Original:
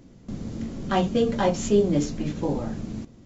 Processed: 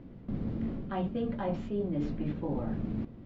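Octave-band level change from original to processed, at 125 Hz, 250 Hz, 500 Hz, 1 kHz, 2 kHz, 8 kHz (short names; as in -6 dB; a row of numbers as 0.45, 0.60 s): -5.5 dB, -7.0 dB, -12.0 dB, -11.0 dB, -12.5 dB, n/a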